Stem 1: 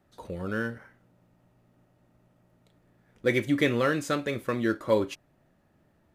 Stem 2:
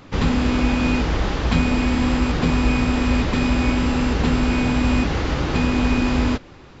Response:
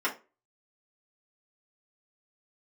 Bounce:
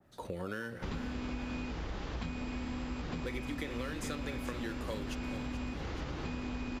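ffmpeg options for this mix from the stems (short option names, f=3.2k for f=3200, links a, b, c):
-filter_complex "[0:a]acrossover=split=260|2100[a][b][c];[a]acompressor=threshold=-42dB:ratio=4[d];[b]acompressor=threshold=-33dB:ratio=4[e];[c]acompressor=threshold=-41dB:ratio=4[f];[d][e][f]amix=inputs=3:normalize=0,adynamicequalizer=threshold=0.00447:dfrequency=2300:dqfactor=0.7:tfrequency=2300:tqfactor=0.7:attack=5:release=100:ratio=0.375:range=2:mode=boostabove:tftype=highshelf,volume=1dB,asplit=2[g][h];[h]volume=-11.5dB[i];[1:a]adelay=700,volume=-13dB[j];[i]aecho=0:1:429|858|1287|1716|2145|2574:1|0.43|0.185|0.0795|0.0342|0.0147[k];[g][j][k]amix=inputs=3:normalize=0,acompressor=threshold=-35dB:ratio=6"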